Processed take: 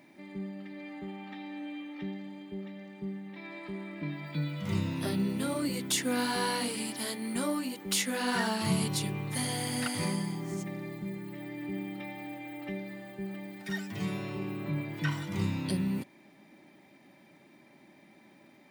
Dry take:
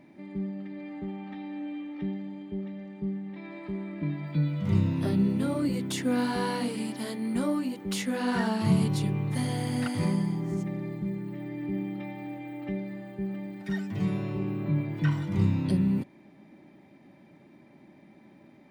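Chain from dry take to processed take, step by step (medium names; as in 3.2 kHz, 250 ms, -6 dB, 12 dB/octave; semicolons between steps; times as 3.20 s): tilt EQ +2.5 dB/octave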